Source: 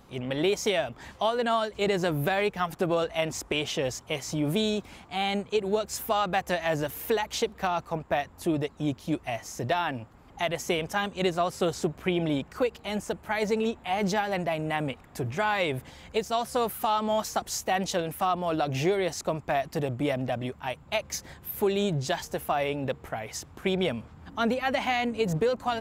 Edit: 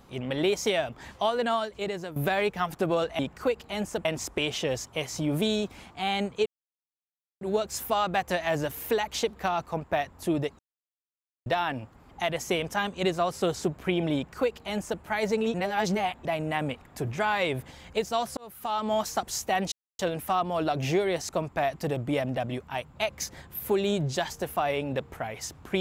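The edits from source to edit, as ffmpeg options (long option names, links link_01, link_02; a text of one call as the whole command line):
ffmpeg -i in.wav -filter_complex "[0:a]asplit=11[link_01][link_02][link_03][link_04][link_05][link_06][link_07][link_08][link_09][link_10][link_11];[link_01]atrim=end=2.16,asetpts=PTS-STARTPTS,afade=type=out:start_time=1.42:duration=0.74:silence=0.188365[link_12];[link_02]atrim=start=2.16:end=3.192,asetpts=PTS-STARTPTS,afade=type=in:duration=0.004:curve=hsin:silence=0.188365[link_13];[link_03]atrim=start=12.338:end=13.202[link_14];[link_04]atrim=start=3.188:end=5.6,asetpts=PTS-STARTPTS,afade=type=out:start_time=2.408:duration=0.004:curve=hsin,apad=pad_dur=0.95[link_15];[link_05]atrim=start=5.6:end=8.78,asetpts=PTS-STARTPTS,afade=type=in:duration=0.004:curve=hsin,afade=type=out:start_time=3.176:duration=0.004:curve=hsin[link_16];[link_06]atrim=start=8.78:end=9.65,asetpts=PTS-STARTPTS,volume=0[link_17];[link_07]atrim=start=9.65:end=13.732,asetpts=PTS-STARTPTS,afade=type=in:duration=0.004:curve=hsin[link_18];[link_08]atrim=start=13.728:end=14.442,asetpts=PTS-STARTPTS,areverse[link_19];[link_09]atrim=start=14.438:end=16.56,asetpts=PTS-STARTPTS,afade=type=out:start_time=2.118:duration=0.004:curve=hsin[link_20];[link_10]atrim=start=16.56:end=17.91,asetpts=PTS-STARTPTS,afade=type=in:duration=0.55,afade=type=out:start_time=1.346:duration=0.004:curve=hsin,apad=pad_dur=0.27[link_21];[link_11]atrim=start=17.91,asetpts=PTS-STARTPTS,afade=type=in:duration=0.004:curve=hsin[link_22];[link_12][link_13]concat=n=2:v=0:a=1[link_23];[link_23][link_14]acrossfade=duration=0.004:curve1=hsin:curve2=hsin[link_24];[link_15][link_16][link_17][link_18]concat=n=4:v=0:a=1[link_25];[link_24][link_25]acrossfade=duration=0.004:curve1=hsin:curve2=hsin[link_26];[link_26][link_19]acrossfade=duration=0.004:curve1=hsin:curve2=hsin[link_27];[link_20][link_21][link_22]concat=n=3:v=0:a=1[link_28];[link_27][link_28]acrossfade=duration=0.004:curve1=hsin:curve2=hsin" out.wav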